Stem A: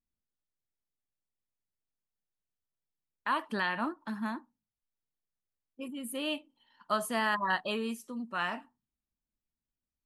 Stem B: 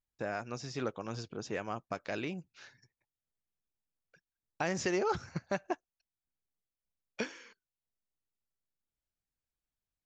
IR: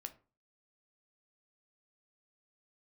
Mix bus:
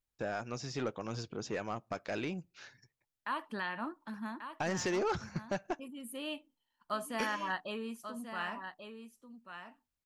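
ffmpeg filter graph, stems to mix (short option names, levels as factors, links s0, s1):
-filter_complex "[0:a]agate=range=0.282:threshold=0.00158:ratio=16:detection=peak,adynamicequalizer=threshold=0.00562:dfrequency=3100:dqfactor=0.7:tfrequency=3100:tqfactor=0.7:attack=5:release=100:ratio=0.375:range=2.5:mode=cutabove:tftype=highshelf,volume=0.501,asplit=2[s0][s1];[s1]volume=0.355[s2];[1:a]asoftclip=type=tanh:threshold=0.0398,volume=1.06,asplit=2[s3][s4];[s4]volume=0.188[s5];[2:a]atrim=start_sample=2205[s6];[s5][s6]afir=irnorm=-1:irlink=0[s7];[s2]aecho=0:1:1138:1[s8];[s0][s3][s7][s8]amix=inputs=4:normalize=0"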